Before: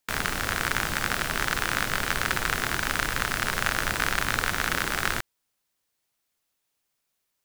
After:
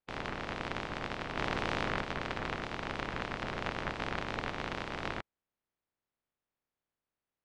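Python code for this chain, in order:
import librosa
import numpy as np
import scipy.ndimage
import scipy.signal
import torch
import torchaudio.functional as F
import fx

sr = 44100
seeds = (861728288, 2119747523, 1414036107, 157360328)

y = fx.spec_clip(x, sr, under_db=16)
y = fx.spacing_loss(y, sr, db_at_10k=38)
y = fx.env_flatten(y, sr, amount_pct=100, at=(1.37, 2.01))
y = F.gain(torch.from_numpy(y), -3.5).numpy()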